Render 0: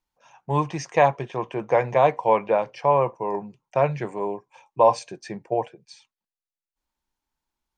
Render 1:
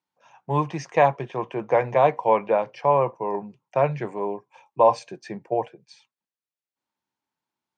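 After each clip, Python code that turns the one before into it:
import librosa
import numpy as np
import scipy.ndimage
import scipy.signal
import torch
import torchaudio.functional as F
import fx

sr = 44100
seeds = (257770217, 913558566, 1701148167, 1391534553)

y = scipy.signal.sosfilt(scipy.signal.butter(4, 110.0, 'highpass', fs=sr, output='sos'), x)
y = fx.high_shelf(y, sr, hz=7000.0, db=-12.0)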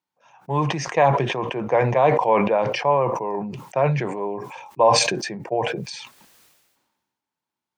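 y = fx.sustainer(x, sr, db_per_s=41.0)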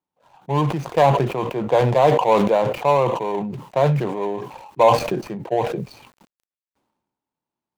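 y = scipy.signal.medfilt(x, 25)
y = y * 10.0 ** (3.0 / 20.0)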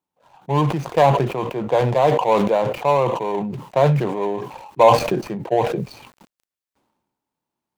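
y = fx.rider(x, sr, range_db=4, speed_s=2.0)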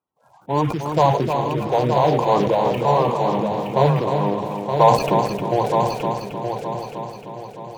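y = fx.spec_quant(x, sr, step_db=30)
y = fx.echo_heads(y, sr, ms=307, heads='first and third', feedback_pct=55, wet_db=-7)
y = y * 10.0 ** (-1.0 / 20.0)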